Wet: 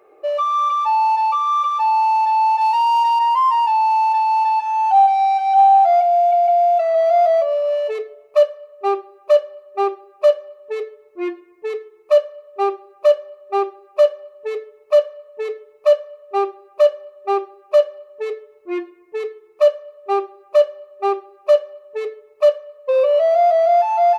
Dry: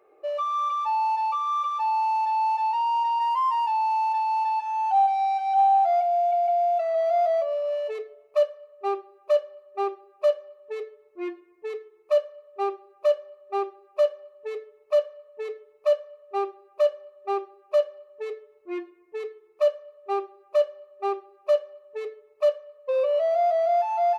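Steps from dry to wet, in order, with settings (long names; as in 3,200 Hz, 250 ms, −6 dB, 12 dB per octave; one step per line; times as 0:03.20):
0:02.61–0:03.19: high-shelf EQ 4,200 Hz +9.5 dB
level +8 dB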